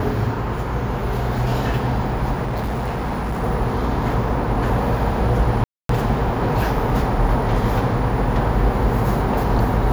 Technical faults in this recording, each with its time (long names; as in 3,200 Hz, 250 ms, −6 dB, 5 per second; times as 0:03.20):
0:02.44–0:03.44: clipping −20 dBFS
0:05.64–0:05.89: drop-out 253 ms